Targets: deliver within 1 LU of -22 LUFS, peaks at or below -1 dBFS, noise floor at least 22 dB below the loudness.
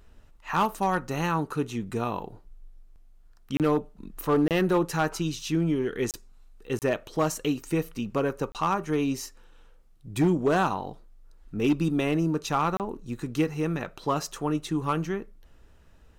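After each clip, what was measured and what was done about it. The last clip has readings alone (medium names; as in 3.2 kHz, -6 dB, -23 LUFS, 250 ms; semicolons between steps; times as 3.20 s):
clipped samples 0.6%; clipping level -16.5 dBFS; dropouts 6; longest dropout 28 ms; loudness -28.0 LUFS; peak level -16.5 dBFS; loudness target -22.0 LUFS
-> clip repair -16.5 dBFS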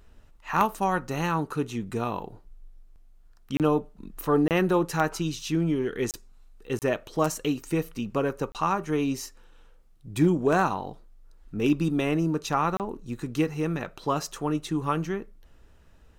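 clipped samples 0.0%; dropouts 6; longest dropout 28 ms
-> interpolate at 3.57/4.48/6.11/6.79/8.52/12.77 s, 28 ms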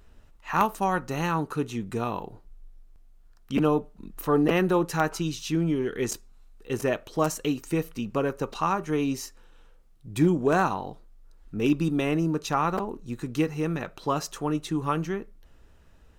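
dropouts 0; loudness -27.5 LUFS; peak level -7.5 dBFS; loudness target -22.0 LUFS
-> trim +5.5 dB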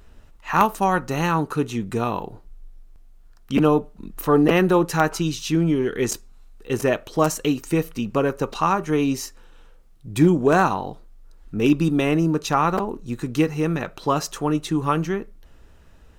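loudness -22.0 LUFS; peak level -2.0 dBFS; noise floor -49 dBFS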